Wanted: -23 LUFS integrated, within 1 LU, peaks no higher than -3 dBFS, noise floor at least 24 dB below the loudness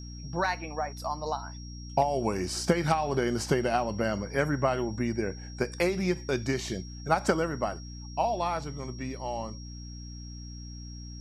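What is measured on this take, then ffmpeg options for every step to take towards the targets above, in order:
hum 60 Hz; highest harmonic 300 Hz; hum level -39 dBFS; steady tone 5.6 kHz; tone level -48 dBFS; loudness -30.0 LUFS; peak level -9.0 dBFS; loudness target -23.0 LUFS
-> -af "bandreject=f=60:t=h:w=4,bandreject=f=120:t=h:w=4,bandreject=f=180:t=h:w=4,bandreject=f=240:t=h:w=4,bandreject=f=300:t=h:w=4"
-af "bandreject=f=5600:w=30"
-af "volume=2.24,alimiter=limit=0.708:level=0:latency=1"

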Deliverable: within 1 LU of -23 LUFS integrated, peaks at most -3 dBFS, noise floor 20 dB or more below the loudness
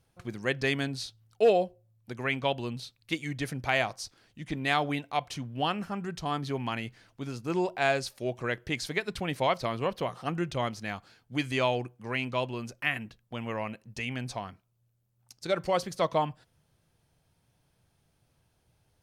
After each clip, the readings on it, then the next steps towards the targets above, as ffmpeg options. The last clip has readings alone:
loudness -31.5 LUFS; peak level -12.0 dBFS; loudness target -23.0 LUFS
-> -af "volume=2.66"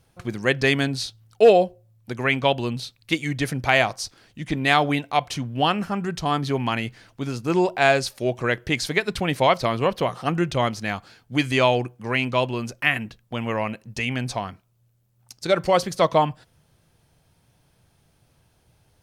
loudness -23.0 LUFS; peak level -3.5 dBFS; noise floor -64 dBFS

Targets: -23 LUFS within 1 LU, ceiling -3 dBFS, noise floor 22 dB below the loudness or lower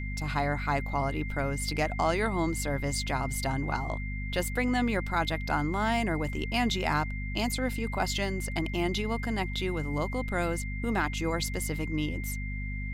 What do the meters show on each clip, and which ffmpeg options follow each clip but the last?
hum 50 Hz; highest harmonic 250 Hz; hum level -32 dBFS; steady tone 2.1 kHz; tone level -40 dBFS; loudness -30.5 LUFS; peak level -14.5 dBFS; loudness target -23.0 LUFS
-> -af "bandreject=f=50:t=h:w=4,bandreject=f=100:t=h:w=4,bandreject=f=150:t=h:w=4,bandreject=f=200:t=h:w=4,bandreject=f=250:t=h:w=4"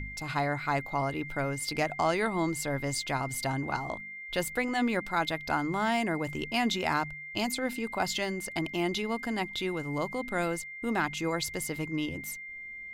hum not found; steady tone 2.1 kHz; tone level -40 dBFS
-> -af "bandreject=f=2100:w=30"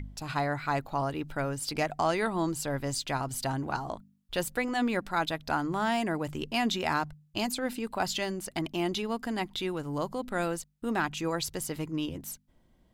steady tone not found; loudness -31.5 LUFS; peak level -16.0 dBFS; loudness target -23.0 LUFS
-> -af "volume=2.66"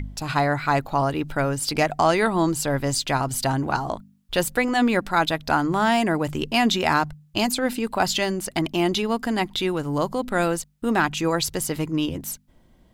loudness -23.0 LUFS; peak level -7.5 dBFS; noise floor -57 dBFS

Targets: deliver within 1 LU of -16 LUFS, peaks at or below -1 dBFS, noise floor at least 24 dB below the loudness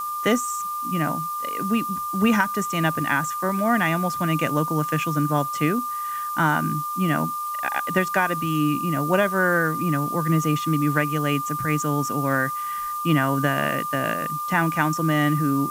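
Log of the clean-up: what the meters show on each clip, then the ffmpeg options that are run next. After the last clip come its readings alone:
steady tone 1.2 kHz; tone level -26 dBFS; noise floor -29 dBFS; noise floor target -47 dBFS; loudness -23.0 LUFS; peak level -4.0 dBFS; loudness target -16.0 LUFS
-> -af "bandreject=f=1200:w=30"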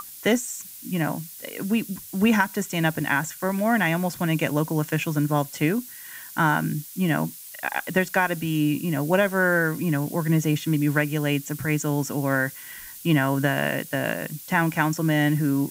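steady tone not found; noise floor -42 dBFS; noise floor target -48 dBFS
-> -af "afftdn=nr=6:nf=-42"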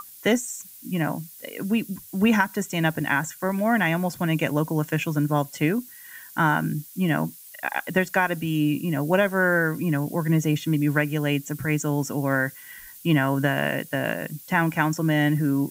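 noise floor -45 dBFS; noise floor target -48 dBFS
-> -af "afftdn=nr=6:nf=-45"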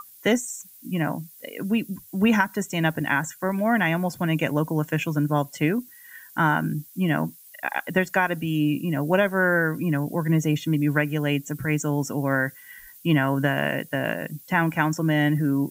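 noise floor -49 dBFS; loudness -24.5 LUFS; peak level -4.5 dBFS; loudness target -16.0 LUFS
-> -af "volume=2.66,alimiter=limit=0.891:level=0:latency=1"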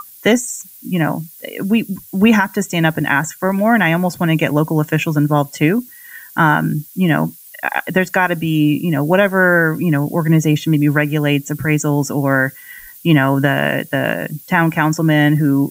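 loudness -16.0 LUFS; peak level -1.0 dBFS; noise floor -40 dBFS

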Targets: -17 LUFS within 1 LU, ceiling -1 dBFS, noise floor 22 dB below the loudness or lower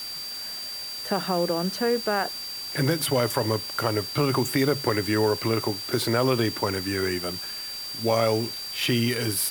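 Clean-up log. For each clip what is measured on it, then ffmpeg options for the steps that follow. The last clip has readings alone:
steady tone 4.7 kHz; tone level -33 dBFS; noise floor -35 dBFS; noise floor target -48 dBFS; loudness -25.5 LUFS; peak level -8.5 dBFS; loudness target -17.0 LUFS
-> -af "bandreject=f=4700:w=30"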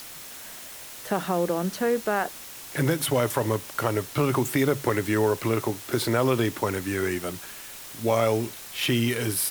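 steady tone not found; noise floor -42 dBFS; noise floor target -48 dBFS
-> -af "afftdn=nr=6:nf=-42"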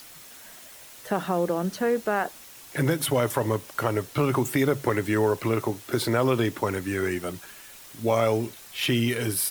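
noise floor -47 dBFS; noise floor target -48 dBFS
-> -af "afftdn=nr=6:nf=-47"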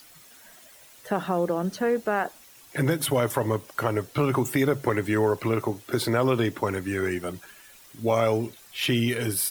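noise floor -52 dBFS; loudness -26.0 LUFS; peak level -9.0 dBFS; loudness target -17.0 LUFS
-> -af "volume=2.82,alimiter=limit=0.891:level=0:latency=1"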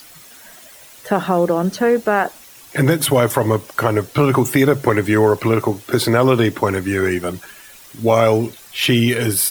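loudness -17.0 LUFS; peak level -1.0 dBFS; noise floor -43 dBFS

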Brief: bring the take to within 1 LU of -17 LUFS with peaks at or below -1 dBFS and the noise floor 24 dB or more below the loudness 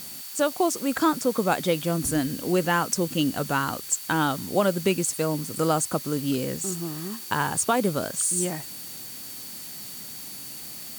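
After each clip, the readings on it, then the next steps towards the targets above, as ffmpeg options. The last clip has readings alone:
steady tone 4.5 kHz; tone level -47 dBFS; noise floor -39 dBFS; noise floor target -50 dBFS; loudness -26.0 LUFS; peak level -10.0 dBFS; loudness target -17.0 LUFS
-> -af "bandreject=f=4500:w=30"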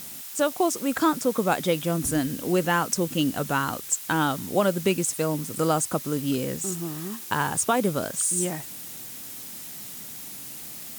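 steady tone not found; noise floor -39 dBFS; noise floor target -50 dBFS
-> -af "afftdn=nr=11:nf=-39"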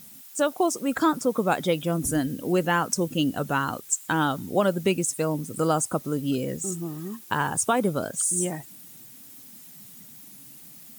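noise floor -47 dBFS; noise floor target -50 dBFS
-> -af "afftdn=nr=6:nf=-47"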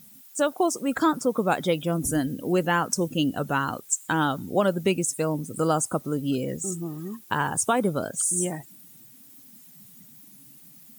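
noise floor -50 dBFS; loudness -25.5 LUFS; peak level -10.5 dBFS; loudness target -17.0 LUFS
-> -af "volume=2.66"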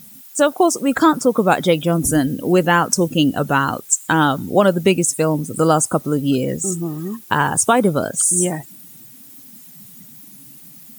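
loudness -17.0 LUFS; peak level -2.0 dBFS; noise floor -42 dBFS

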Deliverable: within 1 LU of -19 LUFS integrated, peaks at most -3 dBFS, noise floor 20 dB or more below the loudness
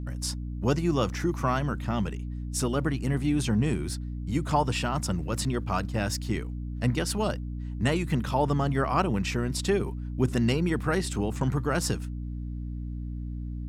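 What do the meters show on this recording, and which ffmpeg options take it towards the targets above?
hum 60 Hz; highest harmonic 300 Hz; hum level -32 dBFS; loudness -28.5 LUFS; peak level -10.5 dBFS; loudness target -19.0 LUFS
-> -af "bandreject=f=60:t=h:w=4,bandreject=f=120:t=h:w=4,bandreject=f=180:t=h:w=4,bandreject=f=240:t=h:w=4,bandreject=f=300:t=h:w=4"
-af "volume=2.99,alimiter=limit=0.708:level=0:latency=1"

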